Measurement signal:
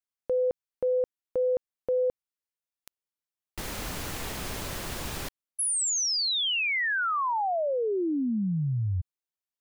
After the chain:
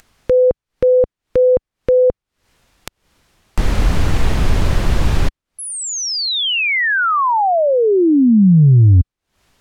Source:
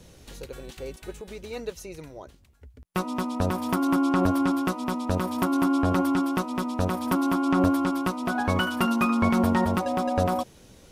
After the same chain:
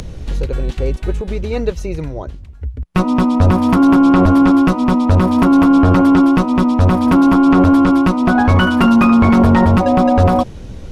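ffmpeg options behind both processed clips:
-af "aemphasis=mode=reproduction:type=bsi,apsyclip=18dB,acompressor=mode=upward:threshold=-33dB:ratio=2.5:attack=34:release=169:knee=2.83:detection=peak,volume=-5.5dB"

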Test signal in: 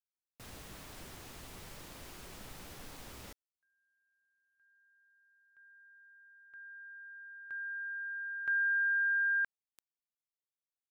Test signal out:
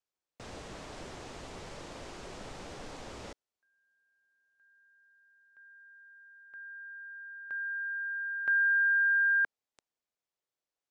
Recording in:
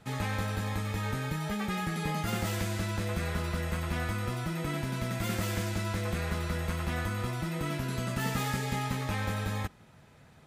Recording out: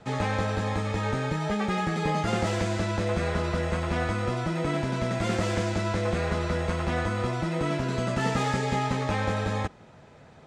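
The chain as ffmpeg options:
-filter_complex "[0:a]lowpass=f=7.9k:w=0.5412,lowpass=f=7.9k:w=1.3066,equalizer=f=540:t=o:w=2:g=7.5,acrossover=split=550|3300[a][b][c];[c]aeval=exprs='clip(val(0),-1,0.0119)':c=same[d];[a][b][d]amix=inputs=3:normalize=0,volume=2.5dB"

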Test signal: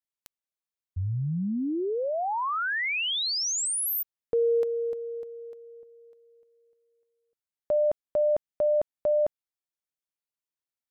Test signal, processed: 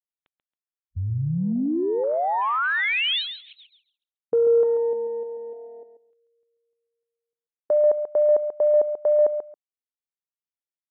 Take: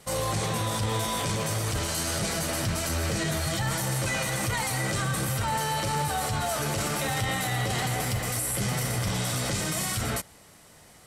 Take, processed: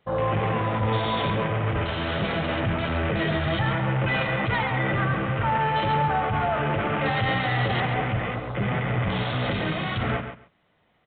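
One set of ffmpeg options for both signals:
-af "afwtdn=0.0158,aresample=8000,aresample=44100,lowshelf=f=82:g=-6,aecho=1:1:137|274:0.355|0.0568,acontrast=24"

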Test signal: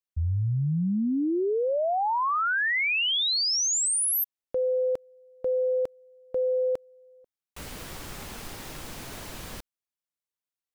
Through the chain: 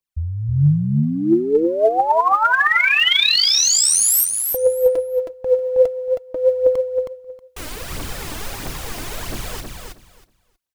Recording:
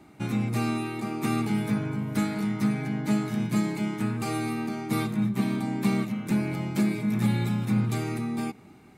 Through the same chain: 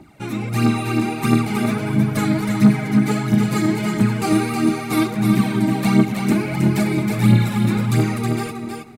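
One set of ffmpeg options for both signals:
-af "aphaser=in_gain=1:out_gain=1:delay=3.4:decay=0.63:speed=1.5:type=triangular,dynaudnorm=f=210:g=5:m=4dB,aecho=1:1:318|636|954:0.562|0.101|0.0182,volume=2.5dB"

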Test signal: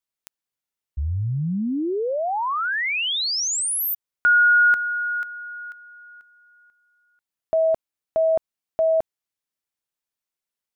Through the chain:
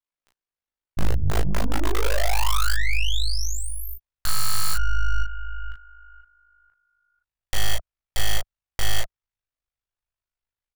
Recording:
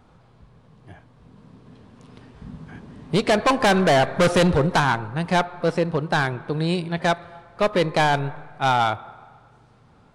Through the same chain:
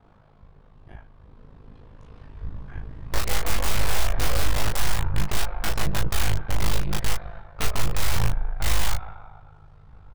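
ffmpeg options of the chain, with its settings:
-filter_complex "[0:a]lowpass=f=1.8k:p=1,equalizer=f=190:w=0.3:g=-3.5,asplit=2[a][b];[b]adelay=15,volume=-14dB[c];[a][c]amix=inputs=2:normalize=0,aeval=exprs='val(0)*sin(2*PI*26*n/s)':c=same,aeval=exprs='(mod(15.8*val(0)+1,2)-1)/15.8':c=same,aeval=exprs='0.0668*(cos(1*acos(clip(val(0)/0.0668,-1,1)))-cos(1*PI/2))+0.0168*(cos(2*acos(clip(val(0)/0.0668,-1,1)))-cos(2*PI/2))+0.00596*(cos(3*acos(clip(val(0)/0.0668,-1,1)))-cos(3*PI/2))+0.00335*(cos(4*acos(clip(val(0)/0.0668,-1,1)))-cos(4*PI/2))+0.00422*(cos(6*acos(clip(val(0)/0.0668,-1,1)))-cos(6*PI/2))':c=same,asubboost=boost=11.5:cutoff=73,acompressor=threshold=-21dB:ratio=6:attack=1.4:release=204:knee=6:detection=peak,aecho=1:1:20|36:0.631|0.668,volume=4dB"

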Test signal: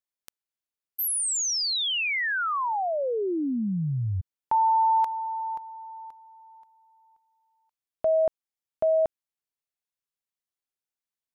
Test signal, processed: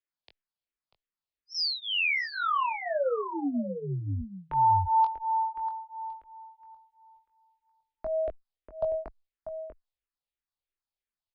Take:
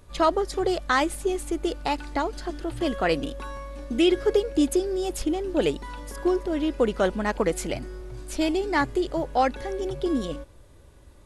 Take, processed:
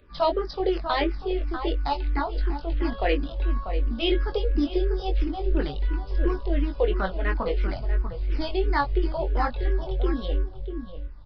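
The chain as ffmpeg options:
-filter_complex "[0:a]asplit=2[a][b];[b]adelay=641.4,volume=-9dB,highshelf=f=4k:g=-14.4[c];[a][c]amix=inputs=2:normalize=0,acrossover=split=200[d][e];[d]alimiter=level_in=6.5dB:limit=-24dB:level=0:latency=1:release=253,volume=-6.5dB[f];[f][e]amix=inputs=2:normalize=0,asubboost=boost=7:cutoff=67,asplit=2[g][h];[h]adelay=21,volume=-5.5dB[i];[g][i]amix=inputs=2:normalize=0,aresample=11025,aresample=44100,asplit=2[j][k];[k]afreqshift=-2.9[l];[j][l]amix=inputs=2:normalize=1"

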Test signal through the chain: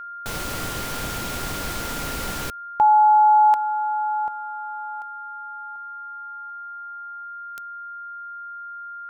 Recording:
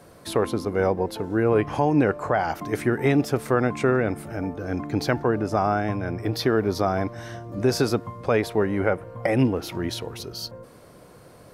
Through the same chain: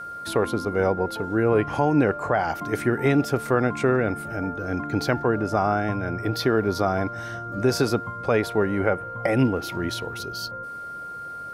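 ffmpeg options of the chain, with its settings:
-af "aeval=exprs='val(0)+0.0224*sin(2*PI*1400*n/s)':c=same"

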